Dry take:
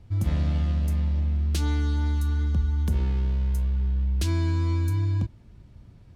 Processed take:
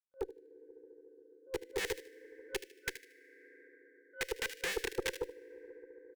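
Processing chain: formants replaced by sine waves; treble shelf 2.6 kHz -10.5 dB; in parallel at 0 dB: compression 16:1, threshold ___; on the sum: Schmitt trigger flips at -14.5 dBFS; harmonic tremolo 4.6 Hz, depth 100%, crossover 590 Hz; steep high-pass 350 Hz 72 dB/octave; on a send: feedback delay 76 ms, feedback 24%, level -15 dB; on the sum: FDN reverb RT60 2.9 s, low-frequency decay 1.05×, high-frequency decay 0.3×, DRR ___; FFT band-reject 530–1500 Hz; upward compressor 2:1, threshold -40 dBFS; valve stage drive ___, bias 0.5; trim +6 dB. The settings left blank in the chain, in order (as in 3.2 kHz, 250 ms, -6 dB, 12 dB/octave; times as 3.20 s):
-24 dBFS, 19 dB, 32 dB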